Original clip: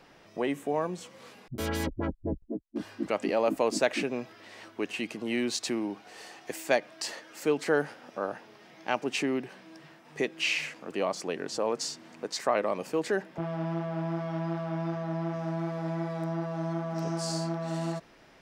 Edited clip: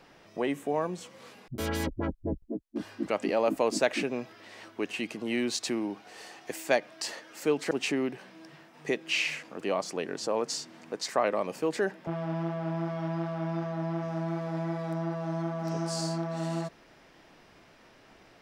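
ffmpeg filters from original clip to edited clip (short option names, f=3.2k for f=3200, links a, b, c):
-filter_complex "[0:a]asplit=2[a][b];[a]atrim=end=7.712[c];[b]atrim=start=9.018[d];[c][d]acrossfade=d=0.004:c1=hsin:c2=hsin"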